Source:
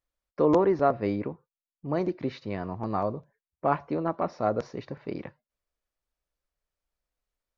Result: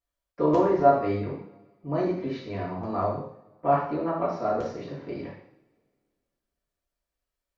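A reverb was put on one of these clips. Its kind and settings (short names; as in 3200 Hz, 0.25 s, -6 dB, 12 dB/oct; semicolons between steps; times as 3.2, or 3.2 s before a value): two-slope reverb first 0.64 s, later 2.1 s, from -25 dB, DRR -6.5 dB; gain -6.5 dB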